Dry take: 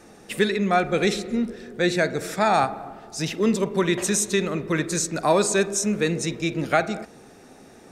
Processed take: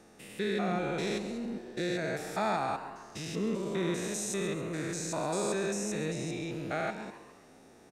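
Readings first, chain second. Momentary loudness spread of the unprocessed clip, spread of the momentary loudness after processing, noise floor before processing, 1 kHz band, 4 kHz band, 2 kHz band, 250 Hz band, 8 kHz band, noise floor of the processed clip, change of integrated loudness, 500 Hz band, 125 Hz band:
10 LU, 7 LU, −49 dBFS, −11.0 dB, −11.0 dB, −11.5 dB, −9.5 dB, −11.5 dB, −57 dBFS, −10.5 dB, −10.0 dB, −8.5 dB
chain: spectrum averaged block by block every 200 ms
echo with shifted repeats 136 ms, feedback 46%, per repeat +130 Hz, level −13 dB
level −7.5 dB

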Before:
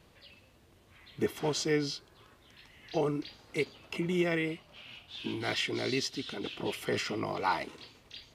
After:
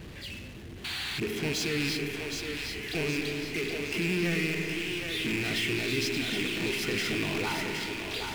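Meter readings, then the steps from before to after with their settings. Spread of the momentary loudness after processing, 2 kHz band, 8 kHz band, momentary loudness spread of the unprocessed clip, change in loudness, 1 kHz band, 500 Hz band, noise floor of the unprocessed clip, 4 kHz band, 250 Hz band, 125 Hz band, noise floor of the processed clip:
6 LU, +7.5 dB, +5.5 dB, 15 LU, +3.0 dB, −3.5 dB, 0.0 dB, −62 dBFS, +6.0 dB, +3.5 dB, +4.5 dB, −43 dBFS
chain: loose part that buzzes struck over −41 dBFS, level −22 dBFS
high-shelf EQ 4,300 Hz −7 dB
spring reverb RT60 1.5 s, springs 32/59 ms, chirp 80 ms, DRR 10 dB
sound drawn into the spectrogram noise, 0:00.84–0:01.20, 700–4,700 Hz −45 dBFS
power curve on the samples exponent 0.5
flat-topped bell 810 Hz −8.5 dB
brickwall limiter −20.5 dBFS, peak gain reduction 4 dB
on a send: echo with a time of its own for lows and highs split 320 Hz, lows 239 ms, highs 768 ms, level −5 dB
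on the sum: one half of a high-frequency compander decoder only
level −3 dB

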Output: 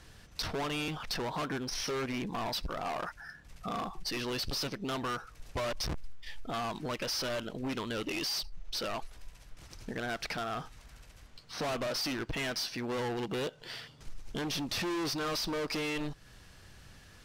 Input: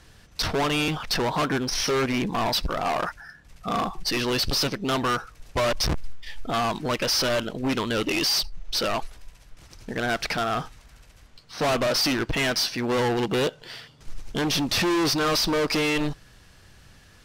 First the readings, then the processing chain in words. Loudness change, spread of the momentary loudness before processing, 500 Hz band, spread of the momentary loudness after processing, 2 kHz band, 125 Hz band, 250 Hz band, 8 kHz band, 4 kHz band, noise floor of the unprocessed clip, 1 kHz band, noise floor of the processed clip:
−10.5 dB, 11 LU, −10.5 dB, 17 LU, −10.5 dB, −10.0 dB, −10.5 dB, −10.5 dB, −10.5 dB, −53 dBFS, −10.5 dB, −56 dBFS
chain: downward compressor 2.5 to 1, threshold −35 dBFS, peak gain reduction 8.5 dB
level −2.5 dB

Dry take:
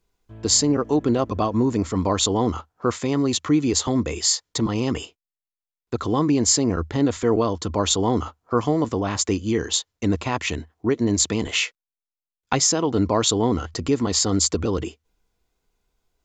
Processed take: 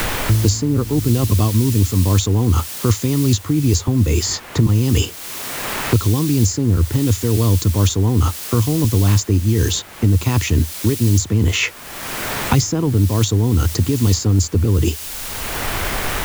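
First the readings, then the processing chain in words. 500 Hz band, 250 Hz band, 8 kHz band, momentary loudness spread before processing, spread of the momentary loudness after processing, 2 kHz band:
−1.0 dB, +3.0 dB, 0.0 dB, 8 LU, 6 LU, +6.5 dB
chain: running median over 3 samples
low-shelf EQ 500 Hz +12 dB
reversed playback
downward compressor 16 to 1, threshold −25 dBFS, peak gain reduction 20.5 dB
reversed playback
graphic EQ with 15 bands 100 Hz +11 dB, 630 Hz −6 dB, 6,300 Hz +6 dB
in parallel at −9 dB: bit-depth reduction 6 bits, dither triangular
on the sum: multiband upward and downward compressor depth 100%
level +6 dB

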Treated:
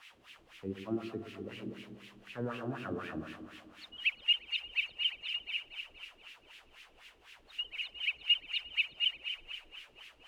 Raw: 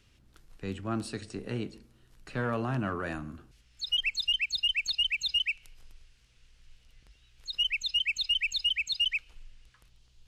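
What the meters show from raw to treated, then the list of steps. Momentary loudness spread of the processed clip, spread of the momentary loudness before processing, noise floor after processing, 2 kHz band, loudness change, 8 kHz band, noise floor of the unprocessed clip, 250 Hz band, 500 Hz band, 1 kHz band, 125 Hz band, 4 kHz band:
22 LU, 13 LU, −63 dBFS, −4.0 dB, −5.5 dB, below −15 dB, −63 dBFS, −4.5 dB, −4.5 dB, −8.0 dB, −9.5 dB, −5.5 dB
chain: RIAA equalisation playback
spring reverb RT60 1.6 s, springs 50 ms, chirp 60 ms, DRR 5.5 dB
in parallel at −5.5 dB: bit-depth reduction 6 bits, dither triangular
on the sum: auto-filter band-pass sine 4 Hz 320–2,600 Hz
parametric band 2,900 Hz +9.5 dB 0.66 octaves
on a send: echo with a time of its own for lows and highs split 720 Hz, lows 120 ms, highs 237 ms, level −10 dB
on the sum: level −6.5 dB

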